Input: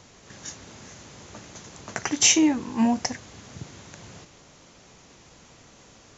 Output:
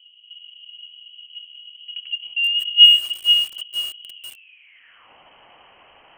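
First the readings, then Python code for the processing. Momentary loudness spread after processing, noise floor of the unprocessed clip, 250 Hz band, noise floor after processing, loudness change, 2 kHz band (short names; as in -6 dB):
20 LU, -53 dBFS, under -40 dB, -52 dBFS, +7.0 dB, +7.5 dB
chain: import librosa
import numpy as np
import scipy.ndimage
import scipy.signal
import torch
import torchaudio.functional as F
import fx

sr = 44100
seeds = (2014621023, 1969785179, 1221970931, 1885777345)

y = fx.filter_sweep_lowpass(x, sr, from_hz=220.0, to_hz=2300.0, start_s=4.1, end_s=5.1, q=5.8)
y = fx.freq_invert(y, sr, carrier_hz=3100)
y = fx.echo_crushed(y, sr, ms=479, feedback_pct=35, bits=5, wet_db=-6)
y = F.gain(torch.from_numpy(y), -1.5).numpy()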